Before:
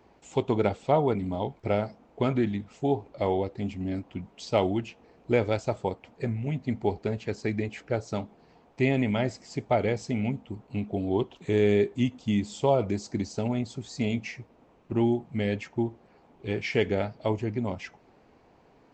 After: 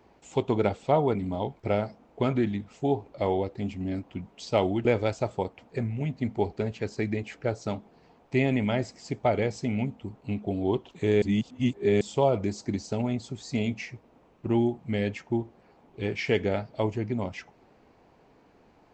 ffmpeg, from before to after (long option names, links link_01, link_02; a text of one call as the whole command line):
ffmpeg -i in.wav -filter_complex "[0:a]asplit=4[link_01][link_02][link_03][link_04];[link_01]atrim=end=4.852[link_05];[link_02]atrim=start=5.308:end=11.682[link_06];[link_03]atrim=start=11.678:end=12.472,asetpts=PTS-STARTPTS,areverse[link_07];[link_04]atrim=start=12.468[link_08];[link_05][link_06]acrossfade=duration=0.004:curve1=hsin:curve2=hsin[link_09];[link_09][link_07]acrossfade=duration=0.004:curve1=hsin:curve2=hsin[link_10];[link_10][link_08]acrossfade=duration=0.004:curve1=hsin:curve2=hsin" out.wav